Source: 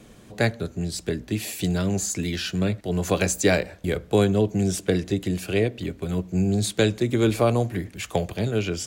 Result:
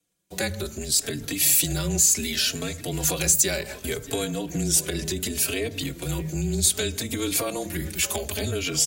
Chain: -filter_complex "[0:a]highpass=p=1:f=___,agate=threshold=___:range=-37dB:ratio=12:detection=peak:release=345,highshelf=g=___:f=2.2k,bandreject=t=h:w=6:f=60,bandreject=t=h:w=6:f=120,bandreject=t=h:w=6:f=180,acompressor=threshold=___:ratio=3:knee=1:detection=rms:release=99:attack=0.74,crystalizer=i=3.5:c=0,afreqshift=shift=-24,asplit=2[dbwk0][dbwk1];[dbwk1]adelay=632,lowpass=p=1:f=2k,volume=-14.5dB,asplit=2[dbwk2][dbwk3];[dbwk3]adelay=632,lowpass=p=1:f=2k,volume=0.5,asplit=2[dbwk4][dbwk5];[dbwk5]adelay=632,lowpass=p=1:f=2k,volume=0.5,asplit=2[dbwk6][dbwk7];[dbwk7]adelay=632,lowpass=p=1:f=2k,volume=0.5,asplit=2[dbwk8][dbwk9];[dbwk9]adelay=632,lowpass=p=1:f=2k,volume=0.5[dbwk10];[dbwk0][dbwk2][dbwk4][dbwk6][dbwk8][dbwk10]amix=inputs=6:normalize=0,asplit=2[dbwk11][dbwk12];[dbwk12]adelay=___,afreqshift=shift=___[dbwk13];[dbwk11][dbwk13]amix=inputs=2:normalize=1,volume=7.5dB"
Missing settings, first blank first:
72, -42dB, 2, -31dB, 3.8, 0.67